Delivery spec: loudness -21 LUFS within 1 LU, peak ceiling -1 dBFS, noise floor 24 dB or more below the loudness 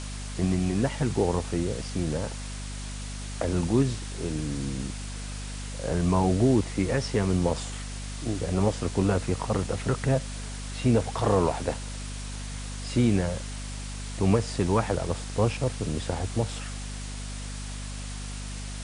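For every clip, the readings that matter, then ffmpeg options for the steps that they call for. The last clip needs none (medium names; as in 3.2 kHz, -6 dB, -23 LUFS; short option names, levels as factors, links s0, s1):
hum 50 Hz; highest harmonic 250 Hz; hum level -34 dBFS; noise floor -36 dBFS; noise floor target -53 dBFS; loudness -28.5 LUFS; peak level -11.0 dBFS; loudness target -21.0 LUFS
-> -af "bandreject=f=50:t=h:w=4,bandreject=f=100:t=h:w=4,bandreject=f=150:t=h:w=4,bandreject=f=200:t=h:w=4,bandreject=f=250:t=h:w=4"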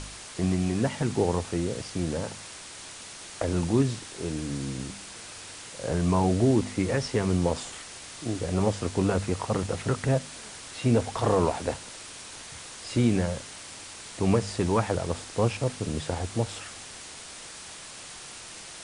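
hum not found; noise floor -43 dBFS; noise floor target -52 dBFS
-> -af "afftdn=nr=9:nf=-43"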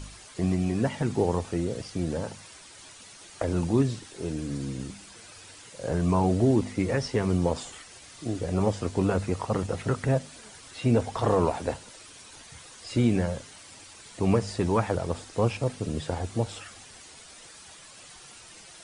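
noise floor -49 dBFS; noise floor target -52 dBFS
-> -af "afftdn=nr=6:nf=-49"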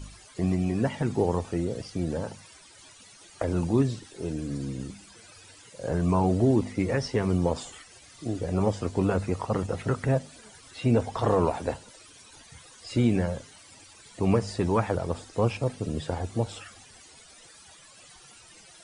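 noise floor -52 dBFS; loudness -28.0 LUFS; peak level -12.0 dBFS; loudness target -21.0 LUFS
-> -af "volume=2.24"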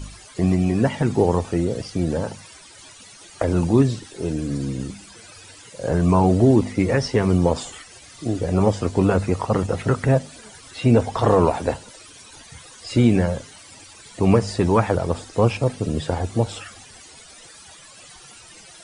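loudness -21.0 LUFS; peak level -5.0 dBFS; noise floor -45 dBFS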